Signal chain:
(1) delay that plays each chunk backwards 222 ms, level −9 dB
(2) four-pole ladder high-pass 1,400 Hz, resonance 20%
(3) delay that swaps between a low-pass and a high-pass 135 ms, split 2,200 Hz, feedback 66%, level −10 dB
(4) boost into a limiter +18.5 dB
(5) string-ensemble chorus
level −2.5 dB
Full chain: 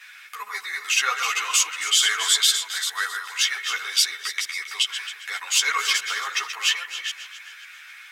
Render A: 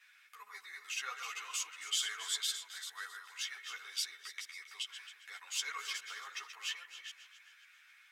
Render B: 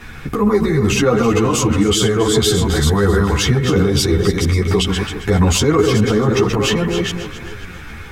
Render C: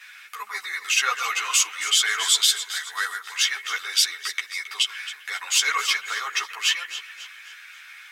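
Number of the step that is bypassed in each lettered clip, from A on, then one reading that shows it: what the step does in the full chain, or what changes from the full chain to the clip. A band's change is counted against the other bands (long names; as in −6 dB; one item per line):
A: 4, change in crest factor +1.5 dB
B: 2, 500 Hz band +33.0 dB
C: 1, change in momentary loudness spread +1 LU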